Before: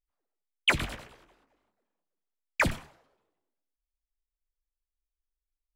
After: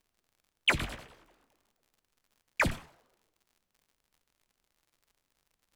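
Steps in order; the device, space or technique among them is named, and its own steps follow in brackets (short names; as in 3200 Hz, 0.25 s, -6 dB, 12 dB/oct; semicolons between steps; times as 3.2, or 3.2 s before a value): warped LP (record warp 33 1/3 rpm, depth 100 cents; crackle 82/s -52 dBFS; pink noise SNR 45 dB); gain -2 dB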